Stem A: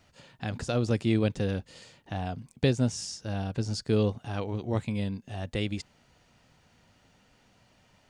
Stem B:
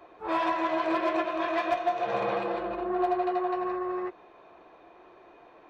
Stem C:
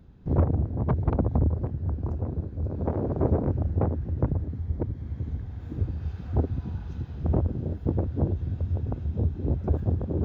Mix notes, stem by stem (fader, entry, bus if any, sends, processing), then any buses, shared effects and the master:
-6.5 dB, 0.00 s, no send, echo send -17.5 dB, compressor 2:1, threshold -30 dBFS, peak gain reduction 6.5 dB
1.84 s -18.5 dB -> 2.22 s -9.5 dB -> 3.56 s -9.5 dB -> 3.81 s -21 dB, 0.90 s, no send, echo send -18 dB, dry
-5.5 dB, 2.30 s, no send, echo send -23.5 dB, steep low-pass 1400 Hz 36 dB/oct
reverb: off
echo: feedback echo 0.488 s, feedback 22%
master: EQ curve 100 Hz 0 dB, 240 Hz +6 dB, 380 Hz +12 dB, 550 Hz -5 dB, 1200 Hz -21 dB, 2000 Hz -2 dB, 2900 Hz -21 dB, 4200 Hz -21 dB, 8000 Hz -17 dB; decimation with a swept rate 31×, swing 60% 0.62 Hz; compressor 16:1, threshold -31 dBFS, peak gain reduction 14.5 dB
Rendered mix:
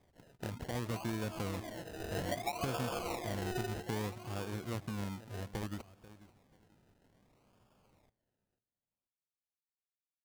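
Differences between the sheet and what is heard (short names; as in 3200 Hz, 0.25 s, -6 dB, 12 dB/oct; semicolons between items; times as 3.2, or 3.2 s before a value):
stem B: entry 0.90 s -> 0.60 s; stem C: muted; master: missing EQ curve 100 Hz 0 dB, 240 Hz +6 dB, 380 Hz +12 dB, 550 Hz -5 dB, 1200 Hz -21 dB, 2000 Hz -2 dB, 2900 Hz -21 dB, 4200 Hz -21 dB, 8000 Hz -17 dB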